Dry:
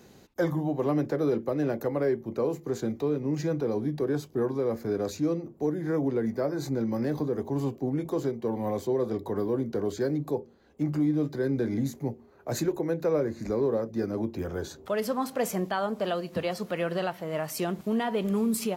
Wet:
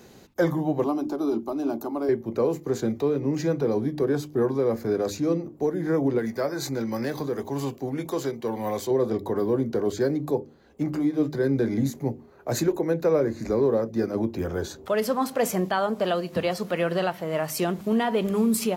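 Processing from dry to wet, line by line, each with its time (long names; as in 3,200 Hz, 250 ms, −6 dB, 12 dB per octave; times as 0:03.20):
0:00.84–0:02.09: phaser with its sweep stopped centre 500 Hz, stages 6
0:06.18–0:08.91: tilt shelving filter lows −5.5 dB, about 930 Hz
whole clip: mains-hum notches 50/100/150/200/250/300 Hz; level +4.5 dB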